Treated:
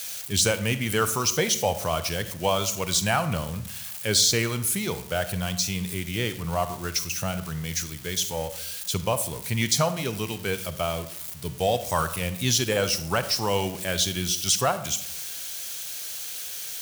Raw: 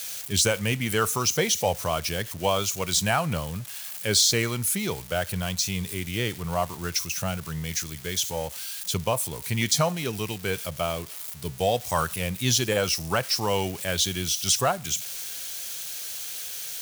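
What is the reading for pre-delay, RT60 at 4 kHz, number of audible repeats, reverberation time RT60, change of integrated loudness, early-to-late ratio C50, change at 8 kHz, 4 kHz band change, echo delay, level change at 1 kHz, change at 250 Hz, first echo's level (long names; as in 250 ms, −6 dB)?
35 ms, 0.45 s, no echo audible, 0.75 s, +0.5 dB, 13.0 dB, 0.0 dB, 0.0 dB, no echo audible, +0.5 dB, +0.5 dB, no echo audible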